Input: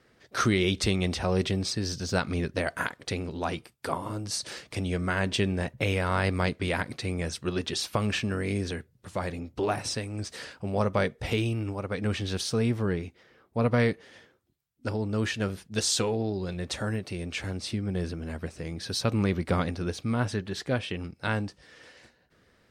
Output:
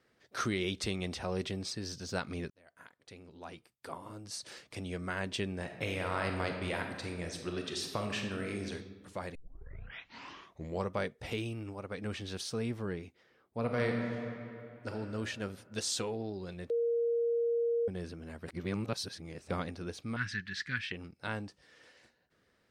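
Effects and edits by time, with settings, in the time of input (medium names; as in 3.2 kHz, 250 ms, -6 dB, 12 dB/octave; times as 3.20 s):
2.50–4.84 s: fade in
5.62–8.71 s: reverb throw, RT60 1.3 s, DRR 3 dB
9.35 s: tape start 1.59 s
13.59–14.90 s: reverb throw, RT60 2.9 s, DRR 1 dB
16.70–17.88 s: bleep 468 Hz -19 dBFS
18.48–19.50 s: reverse
20.16–20.92 s: FFT filter 200 Hz 0 dB, 400 Hz -15 dB, 640 Hz -29 dB, 1.7 kHz +14 dB, 3.1 kHz +3 dB, 4.9 kHz +6 dB, 13 kHz -13 dB
whole clip: bass shelf 120 Hz -6 dB; trim -8 dB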